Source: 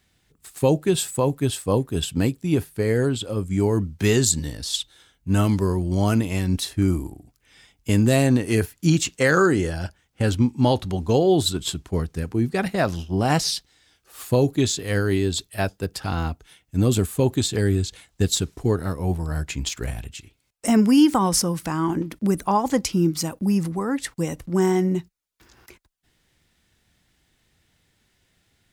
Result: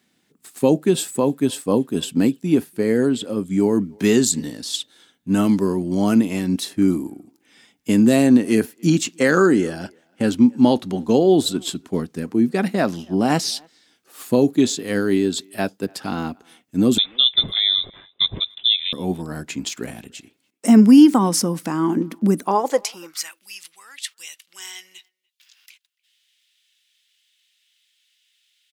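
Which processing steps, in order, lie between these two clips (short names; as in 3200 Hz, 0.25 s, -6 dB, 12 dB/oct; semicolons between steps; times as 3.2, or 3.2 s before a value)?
high-pass sweep 230 Hz -> 3000 Hz, 22.4–23.45; 16.98–18.93 inverted band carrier 3800 Hz; speakerphone echo 0.29 s, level -28 dB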